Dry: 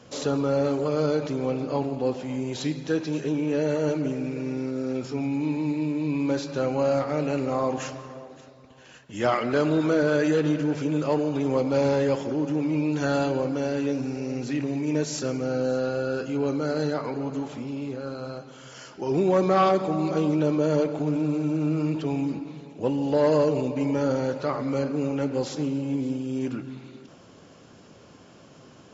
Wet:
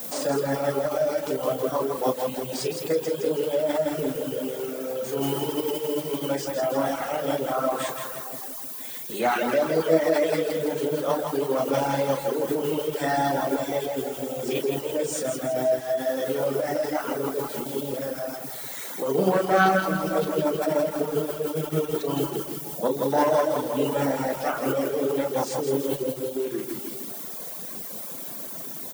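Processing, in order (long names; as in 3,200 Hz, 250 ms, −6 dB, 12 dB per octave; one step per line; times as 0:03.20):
background noise violet −39 dBFS
in parallel at +0.5 dB: downward compressor, threshold −32 dBFS, peak gain reduction 15 dB
on the sum: high-pass filter 180 Hz 24 dB per octave
mains-hum notches 50/100/150/200/250/300 Hz
double-tracking delay 37 ms −6 dB
formants moved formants +4 semitones
on a send: repeating echo 164 ms, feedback 54%, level −4 dB
on the sum: reverb reduction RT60 1.2 s
low-shelf EQ 270 Hz +6.5 dB
feedback echo at a low word length 158 ms, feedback 55%, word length 5 bits, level −12 dB
level −3 dB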